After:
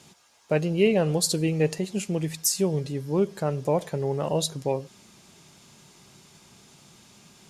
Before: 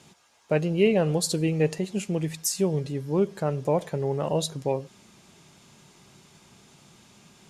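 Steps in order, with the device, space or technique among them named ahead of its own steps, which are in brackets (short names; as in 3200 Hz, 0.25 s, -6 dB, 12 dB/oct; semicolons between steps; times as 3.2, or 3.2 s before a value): presence and air boost (bell 4900 Hz +2.5 dB; high shelf 9600 Hz +6.5 dB)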